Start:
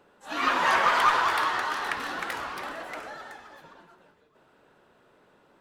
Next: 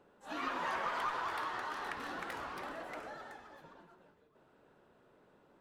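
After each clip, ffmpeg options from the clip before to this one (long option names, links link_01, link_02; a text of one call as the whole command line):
ffmpeg -i in.wav -af "tiltshelf=frequency=970:gain=3.5,acompressor=threshold=-33dB:ratio=2,volume=-6.5dB" out.wav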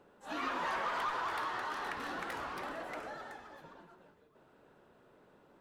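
ffmpeg -i in.wav -af "asoftclip=type=tanh:threshold=-30dB,volume=2.5dB" out.wav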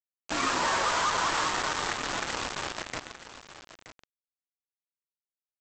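ffmpeg -i in.wav -af "aresample=16000,acrusher=bits=5:mix=0:aa=0.000001,aresample=44100,aecho=1:1:924:0.211,volume=7dB" out.wav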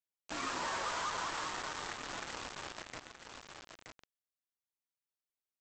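ffmpeg -i in.wav -af "alimiter=level_in=3.5dB:limit=-24dB:level=0:latency=1:release=218,volume=-3.5dB,volume=-3.5dB" out.wav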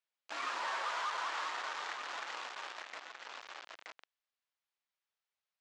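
ffmpeg -i in.wav -af "asoftclip=type=tanh:threshold=-38dB,highpass=660,lowpass=4100,volume=6.5dB" out.wav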